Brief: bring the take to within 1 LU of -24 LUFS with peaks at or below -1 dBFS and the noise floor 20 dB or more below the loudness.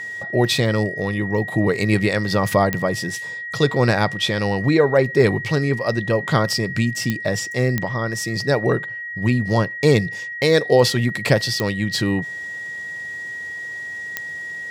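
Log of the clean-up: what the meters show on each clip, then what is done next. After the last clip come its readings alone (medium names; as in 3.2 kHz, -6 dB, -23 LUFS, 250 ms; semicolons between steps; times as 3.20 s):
clicks found 5; steady tone 1.9 kHz; tone level -28 dBFS; loudness -20.5 LUFS; peak level -1.5 dBFS; loudness target -24.0 LUFS
-> de-click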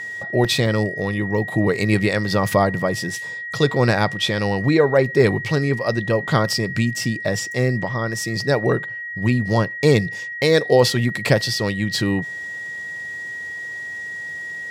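clicks found 0; steady tone 1.9 kHz; tone level -28 dBFS
-> band-stop 1.9 kHz, Q 30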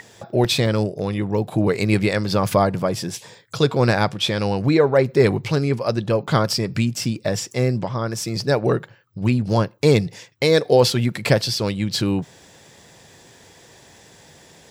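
steady tone not found; loudness -20.5 LUFS; peak level -1.5 dBFS; loudness target -24.0 LUFS
-> trim -3.5 dB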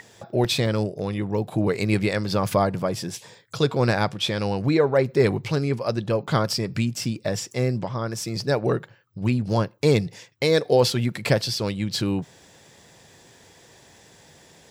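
loudness -24.0 LUFS; peak level -5.0 dBFS; noise floor -54 dBFS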